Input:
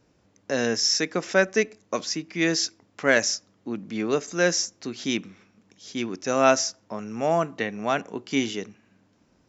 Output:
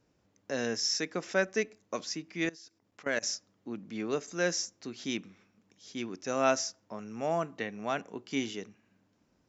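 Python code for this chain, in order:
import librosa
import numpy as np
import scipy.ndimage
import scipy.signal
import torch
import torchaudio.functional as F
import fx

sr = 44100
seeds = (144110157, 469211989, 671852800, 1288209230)

y = fx.level_steps(x, sr, step_db=22, at=(2.45, 3.23))
y = y * 10.0 ** (-8.0 / 20.0)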